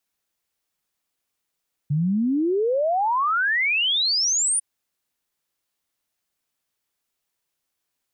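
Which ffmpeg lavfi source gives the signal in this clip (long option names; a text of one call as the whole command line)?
ffmpeg -f lavfi -i "aevalsrc='0.119*clip(min(t,2.7-t)/0.01,0,1)*sin(2*PI*140*2.7/log(9700/140)*(exp(log(9700/140)*t/2.7)-1))':duration=2.7:sample_rate=44100" out.wav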